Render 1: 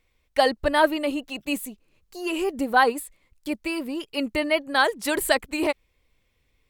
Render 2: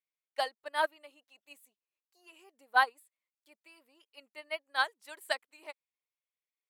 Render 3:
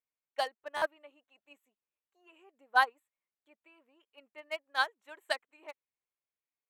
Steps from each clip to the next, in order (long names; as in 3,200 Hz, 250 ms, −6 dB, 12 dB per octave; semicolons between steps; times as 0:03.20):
high-pass filter 680 Hz 12 dB per octave; expander for the loud parts 2.5 to 1, over −30 dBFS; level −4 dB
adaptive Wiener filter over 9 samples; notch filter 2,000 Hz, Q 27; buffer that repeats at 0:00.76, samples 512, times 4